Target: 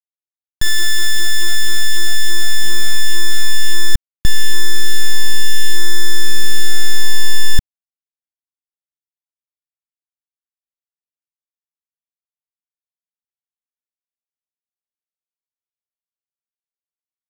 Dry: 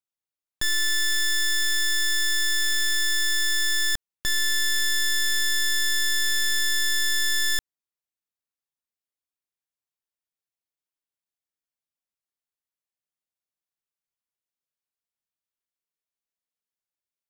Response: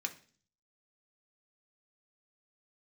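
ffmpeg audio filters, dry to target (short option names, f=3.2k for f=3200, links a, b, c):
-filter_complex "[0:a]asubboost=boost=11:cutoff=230,asplit=2[a][b];[b]alimiter=limit=-12.5dB:level=0:latency=1,volume=-0.5dB[c];[a][c]amix=inputs=2:normalize=0,acrusher=bits=5:mix=0:aa=0.000001"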